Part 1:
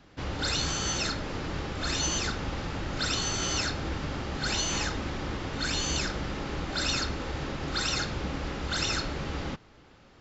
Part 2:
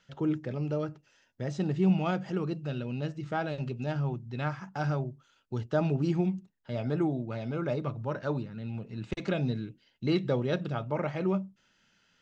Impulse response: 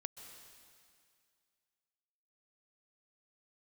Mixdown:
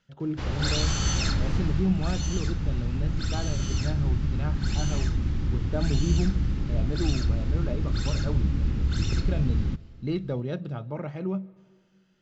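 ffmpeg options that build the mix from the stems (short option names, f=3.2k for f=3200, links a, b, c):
-filter_complex "[0:a]asubboost=boost=12:cutoff=180,adelay=200,volume=-1dB,afade=t=out:st=1.47:d=0.43:silence=0.375837,asplit=2[a][b];[b]volume=-12dB[c];[1:a]lowshelf=f=360:g=8.5,volume=-8dB,asplit=2[d][e];[e]volume=-11.5dB[f];[2:a]atrim=start_sample=2205[g];[c][f]amix=inputs=2:normalize=0[h];[h][g]afir=irnorm=-1:irlink=0[i];[a][d][i]amix=inputs=3:normalize=0"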